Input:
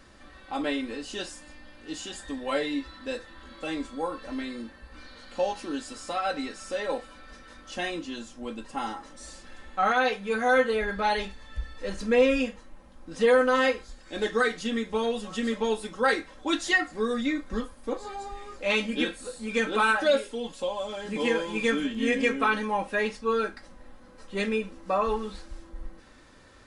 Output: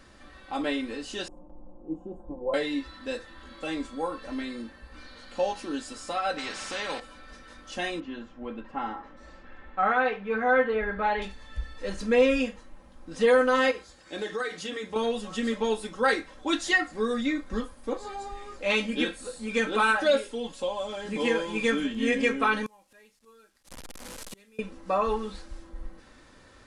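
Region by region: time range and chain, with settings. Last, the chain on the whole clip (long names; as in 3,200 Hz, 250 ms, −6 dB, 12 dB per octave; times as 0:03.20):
0:01.28–0:02.54: inverse Chebyshev low-pass filter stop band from 1,700 Hz + noise gate with hold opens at −42 dBFS, closes at −48 dBFS + comb filter 5.7 ms, depth 98%
0:06.38–0:07.00: low-pass filter 2,600 Hz + spectral tilt +3 dB per octave + every bin compressed towards the loudest bin 2 to 1
0:08.00–0:11.22: Chebyshev low-pass filter 1,900 Hz + flutter between parallel walls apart 11.7 metres, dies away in 0.26 s
0:13.71–0:14.96: high-pass filter 84 Hz + notch filter 230 Hz, Q 5.8 + downward compressor 2.5 to 1, threshold −30 dBFS
0:22.66–0:24.59: linear delta modulator 64 kbit/s, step −37.5 dBFS + high-shelf EQ 4,300 Hz +11 dB + gate with flip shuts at −28 dBFS, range −31 dB
whole clip: no processing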